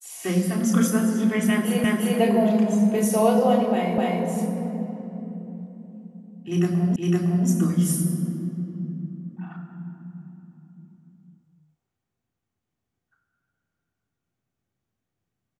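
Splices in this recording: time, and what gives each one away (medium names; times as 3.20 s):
1.84 s: repeat of the last 0.35 s
3.98 s: repeat of the last 0.26 s
6.96 s: repeat of the last 0.51 s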